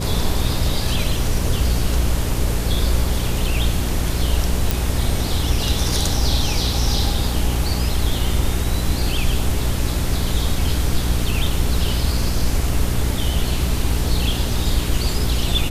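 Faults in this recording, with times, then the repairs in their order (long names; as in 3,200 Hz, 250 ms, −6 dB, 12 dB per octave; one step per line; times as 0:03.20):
mains hum 60 Hz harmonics 7 −23 dBFS
0:04.71: click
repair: click removal
hum removal 60 Hz, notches 7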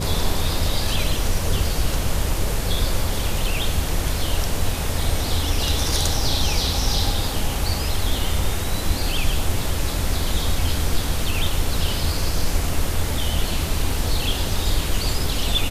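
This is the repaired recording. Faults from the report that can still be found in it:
none of them is left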